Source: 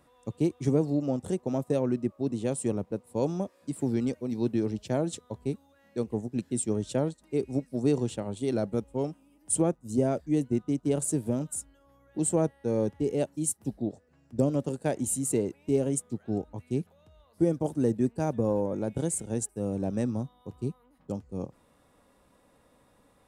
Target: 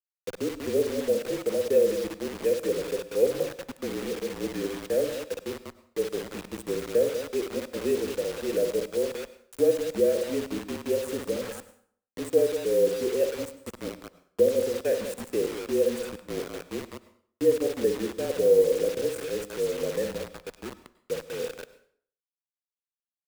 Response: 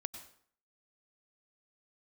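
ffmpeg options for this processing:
-filter_complex "[0:a]asplit=3[a][b][c];[a]bandpass=f=530:t=q:w=8,volume=0dB[d];[b]bandpass=f=1.84k:t=q:w=8,volume=-6dB[e];[c]bandpass=f=2.48k:t=q:w=8,volume=-9dB[f];[d][e][f]amix=inputs=3:normalize=0,aecho=1:1:58.31|189.5:0.398|0.316,acrusher=bits=7:mix=0:aa=0.000001,asplit=2[g][h];[1:a]atrim=start_sample=2205[i];[h][i]afir=irnorm=-1:irlink=0,volume=1dB[j];[g][j]amix=inputs=2:normalize=0,afreqshift=-39,volume=5.5dB"

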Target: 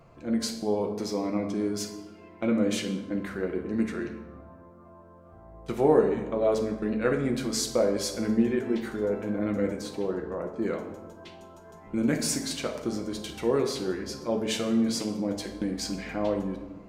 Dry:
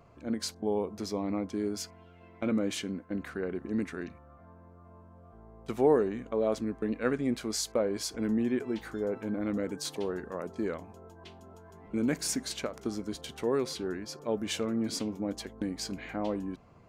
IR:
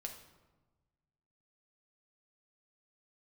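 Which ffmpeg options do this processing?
-filter_complex "[0:a]asettb=1/sr,asplit=3[a][b][c];[a]atrim=end=9.814[d];[b]atrim=start=9.81:end=10.62,asetpts=PTS-STARTPTS,afade=t=in:d=0.004:c=qsin,afade=t=out:st=0.806:d=0.004:c=qsin,highshelf=f=2.1k:g=-11.5[e];[c]atrim=start=10.616[f];[d][e]acrossfade=d=0.004:c1=hsin:c2=qsin[g];[g][f]acrossfade=d=0.004:c1=qsin:c2=hsin[h];[1:a]atrim=start_sample=2205,asetrate=42336,aresample=44100[i];[h][i]afir=irnorm=-1:irlink=0,volume=6.5dB"

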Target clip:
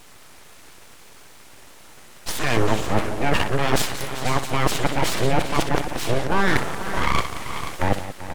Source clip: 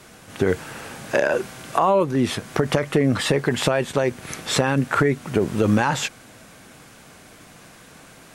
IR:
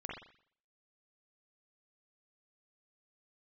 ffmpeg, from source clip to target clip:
-af "areverse,aecho=1:1:62|179|388|486|553:0.299|0.237|0.2|0.299|0.133,aeval=exprs='abs(val(0))':c=same,volume=1dB"

